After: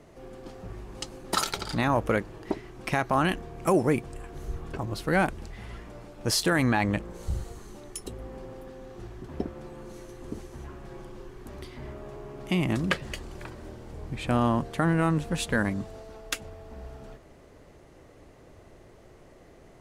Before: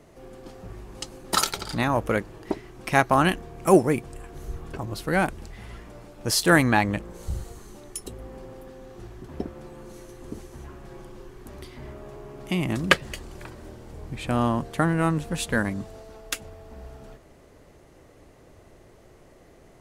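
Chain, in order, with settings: high shelf 8700 Hz -6.5 dB; limiter -13.5 dBFS, peak gain reduction 9.5 dB

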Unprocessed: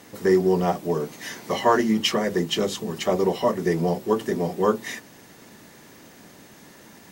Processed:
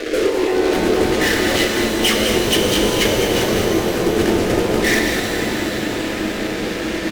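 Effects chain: octaver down 2 oct, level +3 dB; LPF 2400 Hz 12 dB/oct; notches 60/120/180/240/300/360 Hz; comb 6.1 ms, depth 32%; negative-ratio compressor -27 dBFS, ratio -0.5; high-pass sweep 400 Hz -> 140 Hz, 0.39–1.09; fuzz box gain 38 dB, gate -43 dBFS; fixed phaser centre 380 Hz, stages 4; on a send: echo 0.207 s -8 dB; on the sum: shimmer reverb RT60 3.2 s, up +12 st, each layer -8 dB, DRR 1.5 dB

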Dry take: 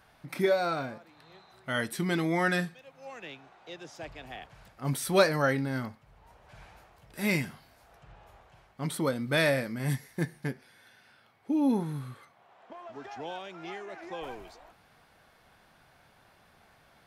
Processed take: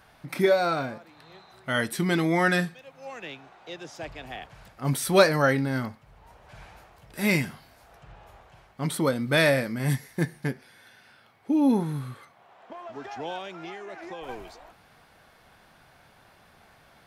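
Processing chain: 13.5–14.29 compressor, threshold -40 dBFS, peak gain reduction 6 dB; gain +4.5 dB

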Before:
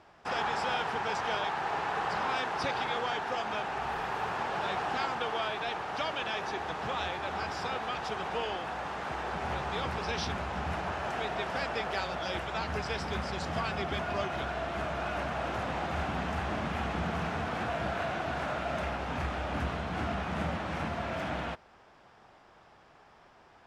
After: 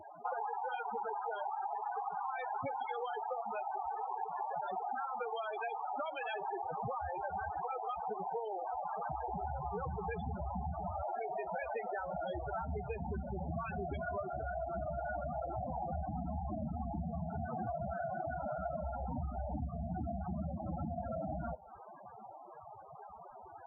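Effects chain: loudest bins only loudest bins 8; on a send at -23.5 dB: reverb RT60 0.40 s, pre-delay 3 ms; on the sum: compressor 10:1, threshold -48 dBFS, peak gain reduction 18 dB; gain +12 dB

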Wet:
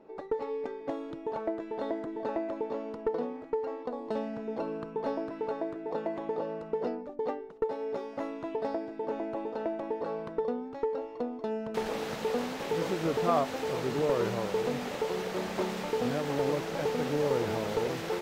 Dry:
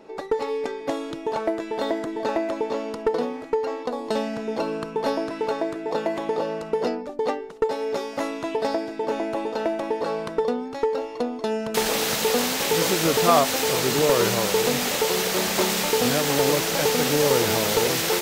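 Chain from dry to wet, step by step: LPF 1100 Hz 6 dB/oct; gain -7 dB

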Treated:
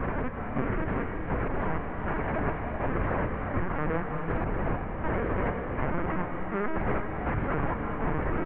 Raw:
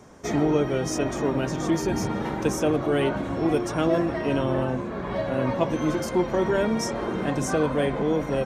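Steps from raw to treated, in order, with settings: infinite clipping; HPF 46 Hz 12 dB/oct; resonant low shelf 170 Hz +13.5 dB, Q 1.5; step gate "xxx...xx" 161 bpm -60 dB; soft clip -20.5 dBFS, distortion -11 dB; mistuned SSB -180 Hz 180–2300 Hz; air absorption 180 m; feedback echo 0.331 s, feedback 33%, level -14 dB; LPC vocoder at 8 kHz pitch kept; non-linear reverb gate 0.43 s rising, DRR 3.5 dB; gain +1.5 dB

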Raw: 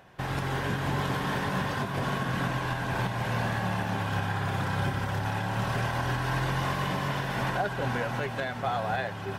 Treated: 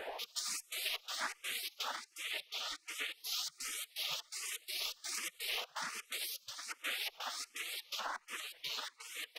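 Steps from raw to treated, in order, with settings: wind noise 120 Hz -24 dBFS; echo 0.288 s -17 dB; compressor 10:1, threshold -26 dBFS, peak gain reduction 16.5 dB; 6.25–6.68 low shelf 130 Hz -11.5 dB; step gate "xx.xx.xx." 125 bpm -24 dB; 1.96–3.13 high shelf 4600 Hz -8 dB; 8.21–8.66 de-hum 99.08 Hz, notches 4; spectral gate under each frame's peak -30 dB weak; endless phaser +1.3 Hz; gain +14.5 dB

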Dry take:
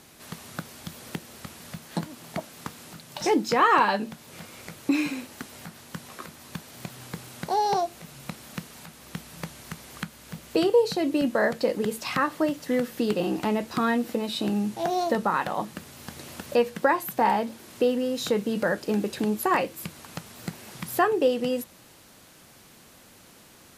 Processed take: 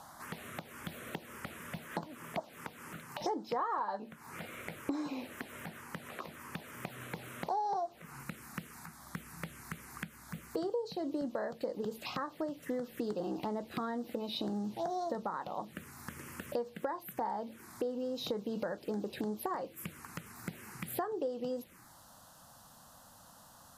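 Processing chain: bell 890 Hz +14 dB 2.3 oct, from 8.23 s +5.5 dB; compressor 5:1, threshold -29 dBFS, peak gain reduction 22.5 dB; envelope phaser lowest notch 310 Hz, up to 2600 Hz, full sweep at -27.5 dBFS; gain -4.5 dB

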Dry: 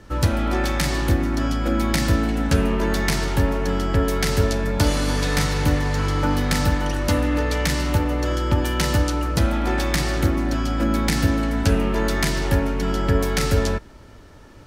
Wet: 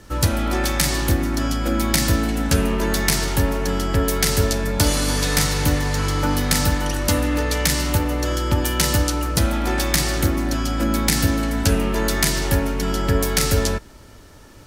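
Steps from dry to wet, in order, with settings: high shelf 5300 Hz +12 dB

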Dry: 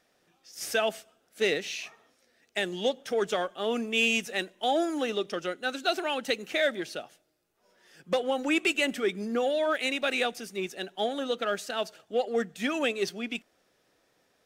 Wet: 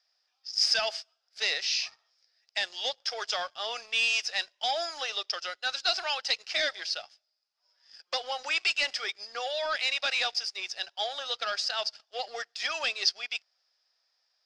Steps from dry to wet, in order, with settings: HPF 700 Hz 24 dB/oct; sample leveller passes 2; synth low-pass 5000 Hz, resonance Q 11; gain -7.5 dB

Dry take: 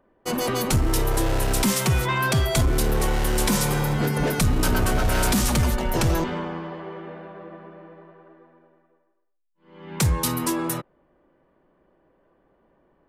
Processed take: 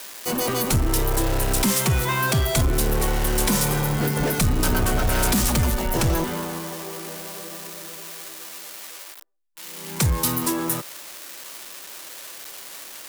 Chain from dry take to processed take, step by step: switching spikes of -22 dBFS

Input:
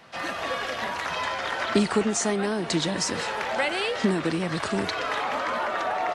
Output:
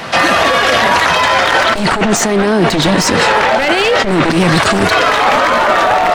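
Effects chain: one-sided fold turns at -22.5 dBFS; negative-ratio compressor -32 dBFS, ratio -1; 1.8–4.3 high shelf 5600 Hz -8 dB; maximiser +24 dB; gain -1 dB

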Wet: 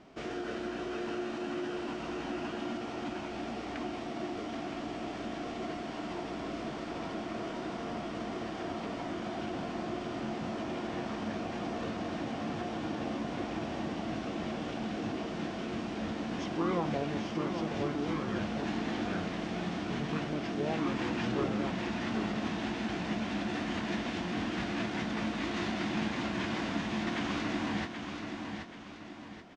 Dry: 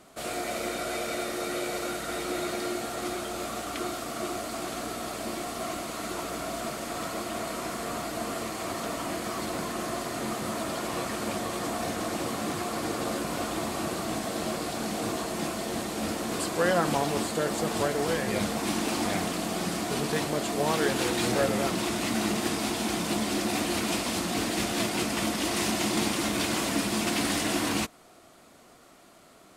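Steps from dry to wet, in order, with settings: formant shift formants -6 st; LPF 3200 Hz 12 dB/oct; feedback echo 0.78 s, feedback 31%, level -8.5 dB; in parallel at +2 dB: compressor, threshold -38 dBFS, peak gain reduction 16.5 dB; on the sum: gain -8 dB

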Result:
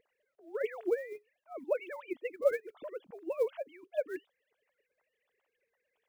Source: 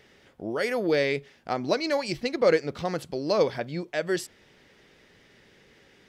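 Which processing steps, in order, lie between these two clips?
sine-wave speech; bell 1300 Hz -7 dB 2.1 oct; companded quantiser 8-bit; harmonic-percussive split harmonic -15 dB; mismatched tape noise reduction decoder only

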